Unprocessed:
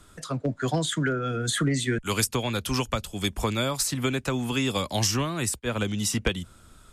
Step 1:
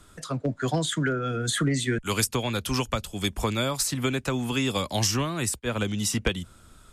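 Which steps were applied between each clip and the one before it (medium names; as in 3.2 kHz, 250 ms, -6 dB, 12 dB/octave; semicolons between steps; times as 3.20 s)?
no audible change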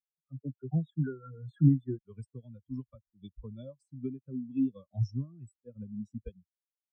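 spectral contrast expander 4:1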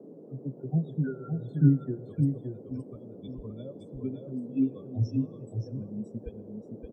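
band noise 160–510 Hz -50 dBFS; delay 569 ms -5.5 dB; reverberation RT60 1.8 s, pre-delay 4 ms, DRR 18 dB; trim +2 dB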